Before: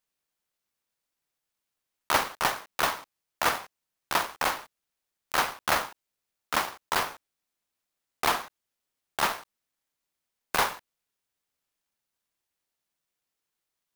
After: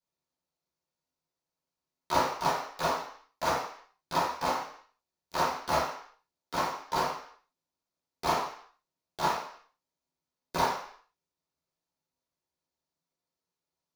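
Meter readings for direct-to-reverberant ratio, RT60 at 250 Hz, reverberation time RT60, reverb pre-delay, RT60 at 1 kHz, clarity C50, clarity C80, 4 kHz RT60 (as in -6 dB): -11.0 dB, 0.50 s, 0.55 s, 10 ms, 0.55 s, 4.5 dB, 8.5 dB, 0.60 s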